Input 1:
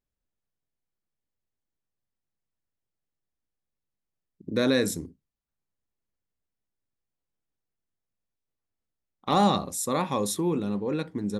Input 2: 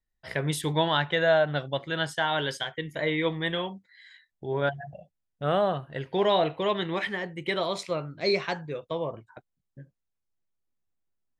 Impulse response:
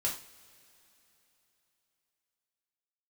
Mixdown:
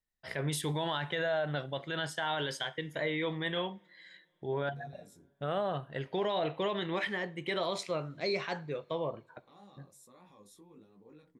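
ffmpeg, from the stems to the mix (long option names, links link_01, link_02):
-filter_complex "[0:a]alimiter=level_in=2dB:limit=-24dB:level=0:latency=1,volume=-2dB,flanger=delay=16.5:depth=5.7:speed=1.3,adelay=200,volume=-19.5dB[link_01];[1:a]alimiter=limit=-21dB:level=0:latency=1:release=28,volume=-3.5dB,asplit=2[link_02][link_03];[link_03]volume=-19dB[link_04];[2:a]atrim=start_sample=2205[link_05];[link_04][link_05]afir=irnorm=-1:irlink=0[link_06];[link_01][link_02][link_06]amix=inputs=3:normalize=0,lowshelf=frequency=68:gain=-9.5"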